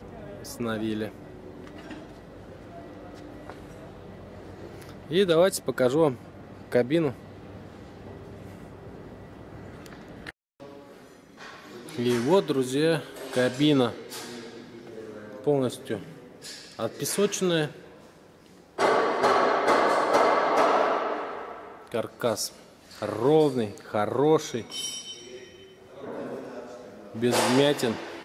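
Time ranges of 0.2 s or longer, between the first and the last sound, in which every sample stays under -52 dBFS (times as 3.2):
10.31–10.6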